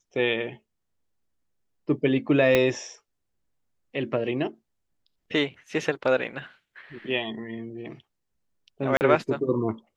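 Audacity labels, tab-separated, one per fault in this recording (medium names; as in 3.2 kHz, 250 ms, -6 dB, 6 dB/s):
2.550000	2.550000	pop -7 dBFS
8.970000	9.010000	dropout 39 ms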